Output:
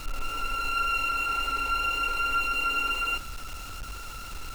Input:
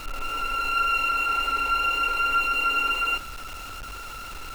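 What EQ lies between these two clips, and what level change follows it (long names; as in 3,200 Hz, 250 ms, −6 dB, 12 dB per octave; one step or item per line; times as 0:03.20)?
bass and treble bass +6 dB, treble +8 dB
high-shelf EQ 6,100 Hz −5.5 dB
−4.0 dB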